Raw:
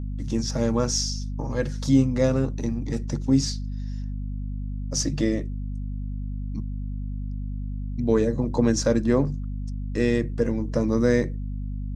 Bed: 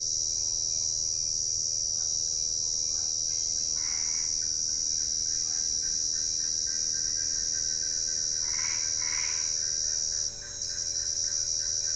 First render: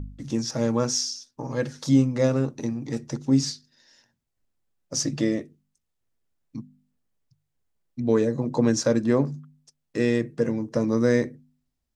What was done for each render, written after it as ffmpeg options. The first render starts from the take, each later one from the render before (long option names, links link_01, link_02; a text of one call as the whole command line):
ffmpeg -i in.wav -af "bandreject=frequency=50:width_type=h:width=4,bandreject=frequency=100:width_type=h:width=4,bandreject=frequency=150:width_type=h:width=4,bandreject=frequency=200:width_type=h:width=4,bandreject=frequency=250:width_type=h:width=4" out.wav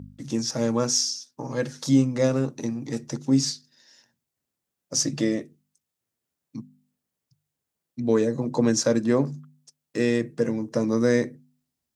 ffmpeg -i in.wav -af "highpass=110,highshelf=frequency=6200:gain=6.5" out.wav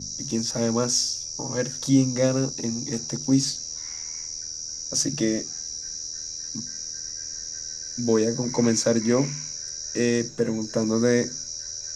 ffmpeg -i in.wav -i bed.wav -filter_complex "[1:a]volume=-5dB[link_01];[0:a][link_01]amix=inputs=2:normalize=0" out.wav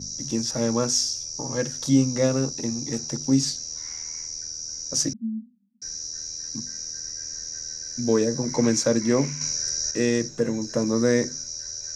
ffmpeg -i in.wav -filter_complex "[0:a]asettb=1/sr,asplit=3[link_01][link_02][link_03];[link_01]atrim=end=5.134[link_04];[link_02]atrim=start=5.13:end=5.82,asetpts=PTS-STARTPTS,afade=type=in:duration=0.004:curve=qsin,afade=type=out:start_time=0.686:duration=0.004:curve=qsin,asuperpass=centerf=220:order=8:qfactor=4[link_05];[link_03]atrim=start=5.816[link_06];[link_04][link_05]acrossfade=duration=0.004:curve1=hsin:curve2=qsin[link_07];[link_07][link_06]acrossfade=duration=0.004:curve1=qsin:curve2=hsin,asplit=3[link_08][link_09][link_10];[link_08]atrim=end=9.412[link_11];[link_09]atrim=start=9.408:end=9.912,asetpts=PTS-STARTPTS,volume=7dB[link_12];[link_10]atrim=start=9.908[link_13];[link_11][link_12]acrossfade=duration=0.004:curve1=hsin:curve2=hsin[link_14];[link_14][link_13]acrossfade=duration=0.004:curve1=hsin:curve2=hsin" out.wav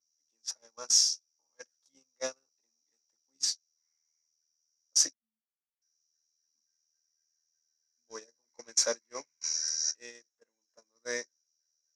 ffmpeg -i in.wav -af "highpass=810,agate=range=-45dB:threshold=-26dB:ratio=16:detection=peak" out.wav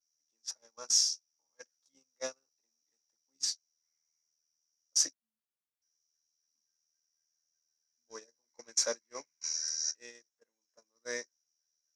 ffmpeg -i in.wav -af "volume=-3dB" out.wav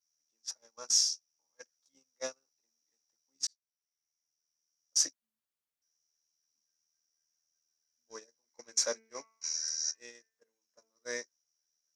ffmpeg -i in.wav -filter_complex "[0:a]asettb=1/sr,asplit=3[link_01][link_02][link_03];[link_01]atrim=end=8.634[link_04];[link_02]atrim=start=8.63:end=11.13,asetpts=PTS-STARTPTS,afade=type=in:duration=0.004:curve=qsin,afade=type=out:start_time=2.496:duration=0.004:curve=qsin,bandreject=frequency=223.3:width_type=h:width=4,bandreject=frequency=446.6:width_type=h:width=4,bandreject=frequency=669.9:width_type=h:width=4,bandreject=frequency=893.2:width_type=h:width=4,bandreject=frequency=1116.5:width_type=h:width=4,bandreject=frequency=1339.8:width_type=h:width=4,bandreject=frequency=1563.1:width_type=h:width=4,bandreject=frequency=1786.4:width_type=h:width=4,bandreject=frequency=2009.7:width_type=h:width=4,bandreject=frequency=2233:width_type=h:width=4,bandreject=frequency=2456.3:width_type=h:width=4,bandreject=frequency=2679.6:width_type=h:width=4,bandreject=frequency=2902.9:width_type=h:width=4[link_05];[link_03]atrim=start=11.126[link_06];[link_04][link_05]acrossfade=duration=0.004:curve1=hsin:curve2=qsin[link_07];[link_07][link_06]acrossfade=duration=0.004:curve1=qsin:curve2=hsin,asplit=2[link_08][link_09];[link_08]atrim=end=3.47,asetpts=PTS-STARTPTS,afade=type=out:start_time=3.466:duration=0.004:curve=hsin[link_10];[link_09]atrim=start=3.47,asetpts=PTS-STARTPTS,afade=type=in:duration=1.52[link_11];[link_10][link_11]concat=n=2:v=0:a=1" out.wav